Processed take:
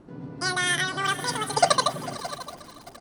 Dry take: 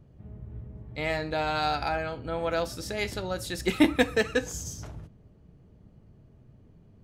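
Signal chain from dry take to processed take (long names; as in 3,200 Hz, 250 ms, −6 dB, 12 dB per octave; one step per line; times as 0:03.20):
high-shelf EQ 5,200 Hz +7 dB
notch filter 3,000 Hz, Q 11
repeating echo 1,053 ms, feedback 39%, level −18 dB
wrong playback speed 33 rpm record played at 78 rpm
Butterworth low-pass 11,000 Hz 96 dB per octave
delay that swaps between a low-pass and a high-pass 253 ms, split 1,000 Hz, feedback 51%, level −13.5 dB
feedback echo at a low word length 621 ms, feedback 35%, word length 6 bits, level −15 dB
level +3 dB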